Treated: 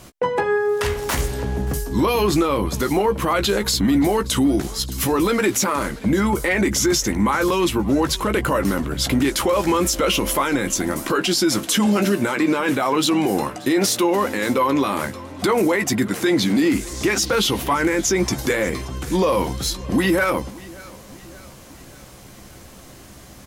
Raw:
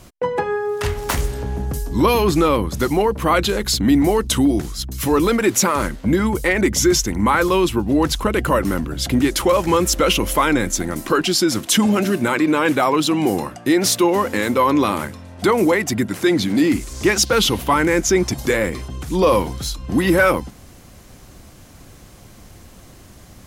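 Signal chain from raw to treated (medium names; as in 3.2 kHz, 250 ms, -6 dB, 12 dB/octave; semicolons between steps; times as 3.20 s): bass shelf 140 Hz -6.5 dB; doubling 15 ms -9 dB; peak limiter -13 dBFS, peak gain reduction 9.5 dB; on a send: feedback delay 580 ms, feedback 52%, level -21.5 dB; on the sum: trim +2.5 dB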